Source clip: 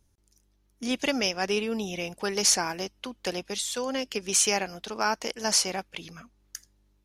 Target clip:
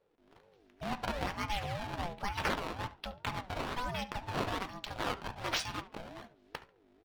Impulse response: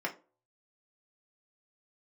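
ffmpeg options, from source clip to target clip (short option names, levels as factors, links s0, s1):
-filter_complex "[0:a]acrusher=samples=16:mix=1:aa=0.000001:lfo=1:lforange=25.6:lforate=1.2,dynaudnorm=f=130:g=3:m=3.76,aemphasis=mode=reproduction:type=cd,acompressor=threshold=0.00282:ratio=1.5,equalizer=f=3500:t=o:w=0.85:g=6.5,asplit=2[s0][s1];[s1]adelay=70,lowpass=f=4300:p=1,volume=0.141,asplit=2[s2][s3];[s3]adelay=70,lowpass=f=4300:p=1,volume=0.29,asplit=2[s4][s5];[s5]adelay=70,lowpass=f=4300:p=1,volume=0.29[s6];[s0][s2][s4][s6]amix=inputs=4:normalize=0,asplit=2[s7][s8];[1:a]atrim=start_sample=2205[s9];[s8][s9]afir=irnorm=-1:irlink=0,volume=0.376[s10];[s7][s10]amix=inputs=2:normalize=0,aeval=exprs='val(0)*sin(2*PI*400*n/s+400*0.25/2.1*sin(2*PI*2.1*n/s))':c=same,volume=0.531"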